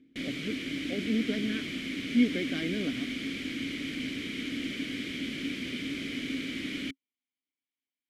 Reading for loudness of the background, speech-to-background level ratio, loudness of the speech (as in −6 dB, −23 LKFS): −34.5 LKFS, 2.0 dB, −32.5 LKFS